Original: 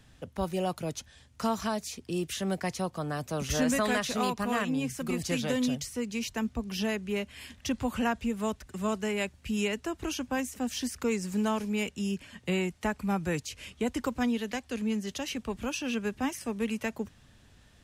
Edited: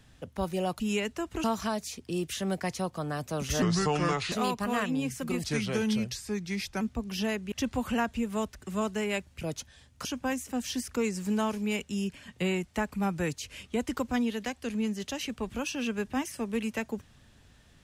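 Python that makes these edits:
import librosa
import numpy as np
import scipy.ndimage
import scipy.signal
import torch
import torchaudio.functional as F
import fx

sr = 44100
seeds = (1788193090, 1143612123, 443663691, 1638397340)

y = fx.edit(x, sr, fx.swap(start_s=0.8, length_s=0.64, other_s=9.48, other_length_s=0.64),
    fx.speed_span(start_s=3.62, length_s=0.49, speed=0.7),
    fx.speed_span(start_s=5.25, length_s=1.16, speed=0.86),
    fx.cut(start_s=7.12, length_s=0.47), tone=tone)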